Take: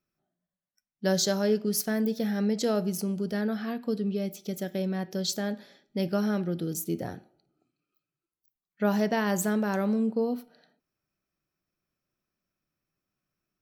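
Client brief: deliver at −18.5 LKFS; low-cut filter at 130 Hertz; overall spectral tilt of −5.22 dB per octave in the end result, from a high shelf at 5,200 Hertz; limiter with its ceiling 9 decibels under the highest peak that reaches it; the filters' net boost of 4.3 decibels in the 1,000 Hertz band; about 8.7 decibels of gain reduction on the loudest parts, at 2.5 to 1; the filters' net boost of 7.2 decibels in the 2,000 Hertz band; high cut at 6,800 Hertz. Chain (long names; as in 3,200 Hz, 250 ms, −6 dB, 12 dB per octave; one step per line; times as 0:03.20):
high-pass filter 130 Hz
low-pass filter 6,800 Hz
parametric band 1,000 Hz +4 dB
parametric band 2,000 Hz +8.5 dB
high-shelf EQ 5,200 Hz −7 dB
downward compressor 2.5 to 1, threshold −33 dBFS
level +19.5 dB
brickwall limiter −8.5 dBFS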